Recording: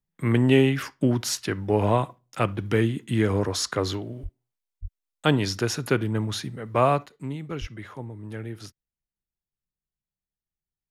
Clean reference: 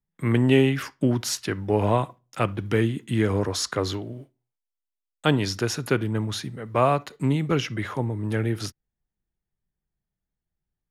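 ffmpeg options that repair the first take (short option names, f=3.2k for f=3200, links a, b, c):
-filter_complex "[0:a]asplit=3[a][b][c];[a]afade=t=out:st=4.22:d=0.02[d];[b]highpass=f=140:w=0.5412,highpass=f=140:w=1.3066,afade=t=in:st=4.22:d=0.02,afade=t=out:st=4.34:d=0.02[e];[c]afade=t=in:st=4.34:d=0.02[f];[d][e][f]amix=inputs=3:normalize=0,asplit=3[g][h][i];[g]afade=t=out:st=4.81:d=0.02[j];[h]highpass=f=140:w=0.5412,highpass=f=140:w=1.3066,afade=t=in:st=4.81:d=0.02,afade=t=out:st=4.93:d=0.02[k];[i]afade=t=in:st=4.93:d=0.02[l];[j][k][l]amix=inputs=3:normalize=0,asplit=3[m][n][o];[m]afade=t=out:st=7.6:d=0.02[p];[n]highpass=f=140:w=0.5412,highpass=f=140:w=1.3066,afade=t=in:st=7.6:d=0.02,afade=t=out:st=7.72:d=0.02[q];[o]afade=t=in:st=7.72:d=0.02[r];[p][q][r]amix=inputs=3:normalize=0,asetnsamples=n=441:p=0,asendcmd='7.06 volume volume 10dB',volume=0dB"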